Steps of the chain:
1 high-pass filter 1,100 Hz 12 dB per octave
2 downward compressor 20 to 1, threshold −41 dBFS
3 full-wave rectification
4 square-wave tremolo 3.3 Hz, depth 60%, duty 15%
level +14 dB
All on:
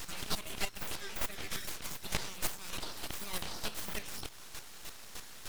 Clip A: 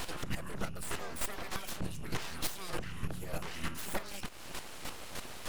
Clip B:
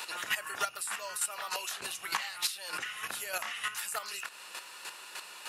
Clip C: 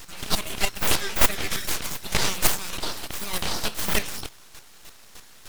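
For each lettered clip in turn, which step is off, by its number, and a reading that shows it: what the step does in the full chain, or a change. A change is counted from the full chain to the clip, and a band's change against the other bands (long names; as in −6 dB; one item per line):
1, 4 kHz band −6.0 dB
3, 125 Hz band −20.0 dB
2, average gain reduction 9.0 dB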